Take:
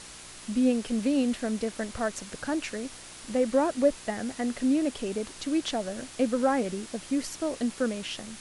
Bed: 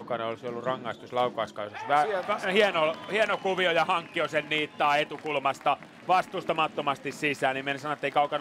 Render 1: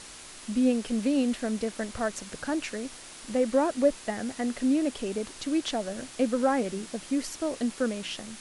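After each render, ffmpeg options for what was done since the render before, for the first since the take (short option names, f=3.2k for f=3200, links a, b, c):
-af "bandreject=f=60:t=h:w=4,bandreject=f=120:t=h:w=4,bandreject=f=180:t=h:w=4"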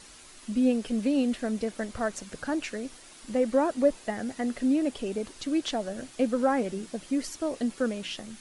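-af "afftdn=nr=7:nf=-46"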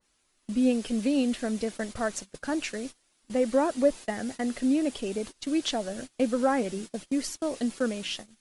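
-af "agate=range=-21dB:threshold=-38dB:ratio=16:detection=peak,adynamicequalizer=threshold=0.00501:dfrequency=2400:dqfactor=0.7:tfrequency=2400:tqfactor=0.7:attack=5:release=100:ratio=0.375:range=2:mode=boostabove:tftype=highshelf"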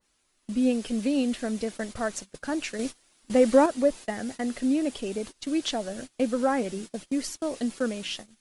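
-filter_complex "[0:a]asettb=1/sr,asplit=3[a][b][c];[a]atrim=end=2.794[d];[b]atrim=start=2.79:end=3.66,asetpts=PTS-STARTPTS,afade=t=in:d=0.004:c=qsin,afade=t=out:st=0.866:d=0.004:c=qsin,acontrast=49[e];[c]atrim=start=3.656[f];[d][e]acrossfade=d=0.004:c1=hsin:c2=qsin[g];[g][f]acrossfade=d=0.004:c1=qsin:c2=hsin"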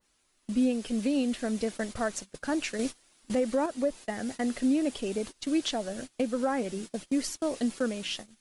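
-af "alimiter=limit=-18.5dB:level=0:latency=1:release=452"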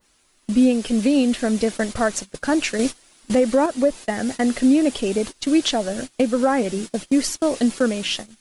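-af "volume=10dB"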